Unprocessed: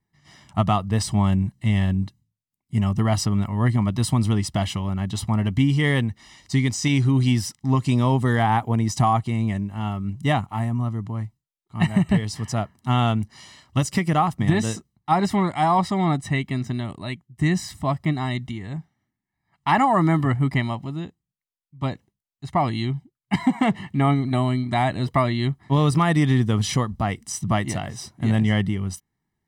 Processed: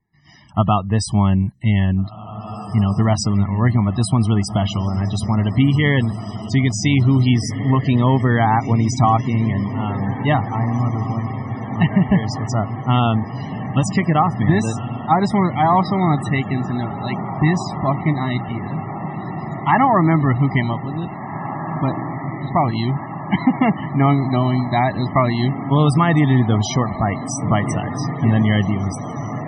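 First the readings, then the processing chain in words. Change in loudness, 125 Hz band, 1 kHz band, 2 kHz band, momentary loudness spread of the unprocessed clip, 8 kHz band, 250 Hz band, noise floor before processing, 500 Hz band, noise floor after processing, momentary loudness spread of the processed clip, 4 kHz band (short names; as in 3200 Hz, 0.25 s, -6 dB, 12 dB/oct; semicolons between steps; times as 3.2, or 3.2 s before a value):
+4.0 dB, +4.5 dB, +4.5 dB, +3.5 dB, 10 LU, +1.5 dB, +4.5 dB, -85 dBFS, +4.5 dB, -31 dBFS, 10 LU, +2.0 dB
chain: diffused feedback echo 1.896 s, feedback 74%, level -11 dB; loudest bins only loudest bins 64; gain +4 dB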